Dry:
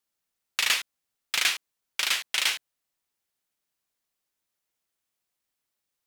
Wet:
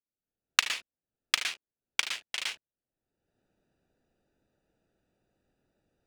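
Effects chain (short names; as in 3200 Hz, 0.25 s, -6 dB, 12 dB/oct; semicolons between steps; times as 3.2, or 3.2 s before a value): Wiener smoothing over 41 samples; recorder AGC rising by 33 dB/s; bell 14000 Hz -13 dB 0.47 oct; gain -8 dB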